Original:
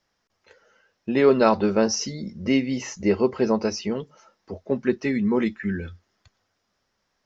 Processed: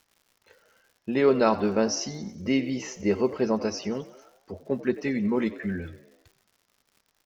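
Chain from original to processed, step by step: frequency-shifting echo 92 ms, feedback 55%, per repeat +60 Hz, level -17 dB; crackle 160/s -45 dBFS; gain -3.5 dB

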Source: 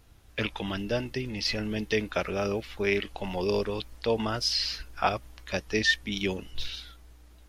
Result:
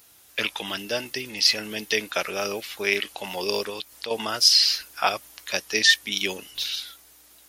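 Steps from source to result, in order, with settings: HPF 100 Hz 6 dB/oct; RIAA curve recording; 3.69–4.11 compressor, threshold -33 dBFS, peak gain reduction 8.5 dB; gain +3 dB

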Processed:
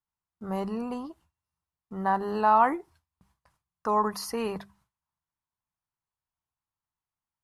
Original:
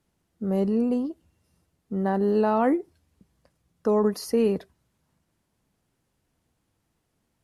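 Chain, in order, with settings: notches 50/100/150/200 Hz; gate with hold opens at -53 dBFS; graphic EQ 250/500/1000 Hz -9/-10/+12 dB

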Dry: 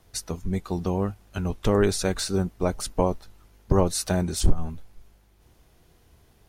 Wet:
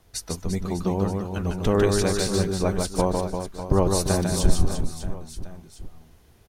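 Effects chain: reverse bouncing-ball echo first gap 0.15 s, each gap 1.3×, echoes 5

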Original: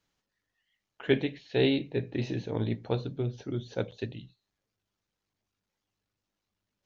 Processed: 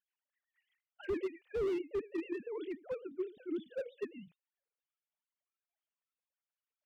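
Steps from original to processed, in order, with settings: sine-wave speech; vibrato 9 Hz 98 cents; slew limiter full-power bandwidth 19 Hz; gain -4.5 dB

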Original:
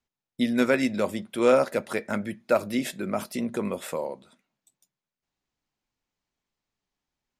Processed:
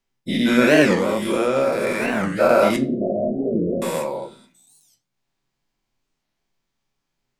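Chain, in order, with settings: spectral dilation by 0.24 s; 0.94–2.14 compressor 5:1, threshold -18 dBFS, peak gain reduction 7 dB; 2.76–3.82 Chebyshev low-pass 720 Hz, order 10; reverb RT60 0.35 s, pre-delay 5 ms, DRR 2 dB; record warp 45 rpm, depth 250 cents; gain -1 dB

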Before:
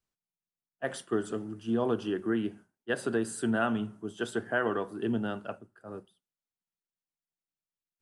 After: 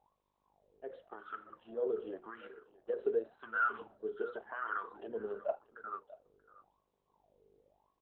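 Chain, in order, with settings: opening faded in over 2.06 s; gate with hold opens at -53 dBFS; tilt shelf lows -6 dB, about 1400 Hz; limiter -25 dBFS, peak gain reduction 8.5 dB; compressor 6:1, threshold -37 dBFS, peak gain reduction 7 dB; notches 60/120/180/240/300/360/420/480/540/600 Hz; buzz 50 Hz, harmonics 22, -60 dBFS -8 dB/oct; wah 0.9 Hz 420–1400 Hz, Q 10; echo 0.635 s -18 dB; gain +17 dB; Opus 8 kbps 48000 Hz

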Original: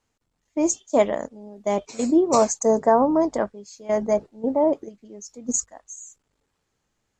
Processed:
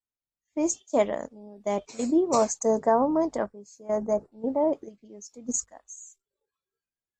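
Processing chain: spectral noise reduction 22 dB; 3.46–4.32 EQ curve 1300 Hz 0 dB, 3300 Hz -16 dB, 6800 Hz -1 dB; gain -4.5 dB

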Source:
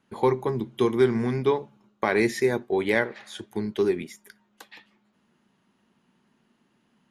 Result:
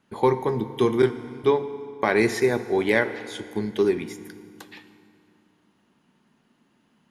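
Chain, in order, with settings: 1.02–1.44 gate -19 dBFS, range -18 dB; FDN reverb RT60 2.4 s, low-frequency decay 1.25×, high-frequency decay 0.8×, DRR 11 dB; gain +2 dB

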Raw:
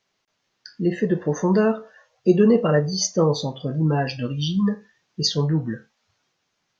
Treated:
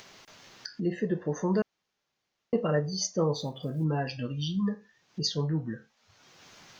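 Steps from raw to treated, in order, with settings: 3.35–3.86 block floating point 7-bit; upward compressor, threshold -22 dBFS; 1.62–2.53 room tone; gain -8 dB

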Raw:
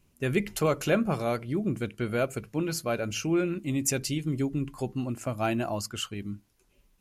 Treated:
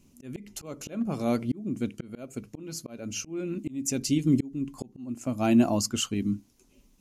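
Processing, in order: fifteen-band EQ 250 Hz +12 dB, 1600 Hz -5 dB, 6300 Hz +7 dB; hard clip -10.5 dBFS, distortion -39 dB; auto swell 0.677 s; gain +2.5 dB

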